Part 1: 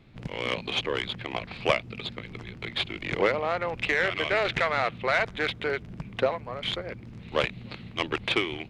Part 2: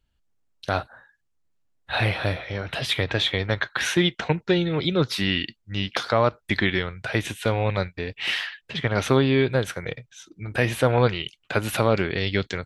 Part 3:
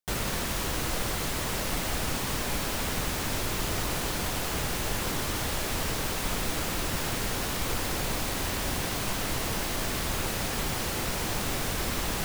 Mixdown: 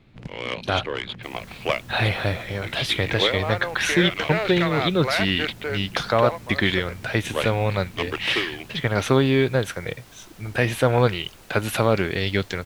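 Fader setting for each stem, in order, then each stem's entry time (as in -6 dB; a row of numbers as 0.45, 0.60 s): 0.0, +1.0, -18.5 dB; 0.00, 0.00, 1.15 s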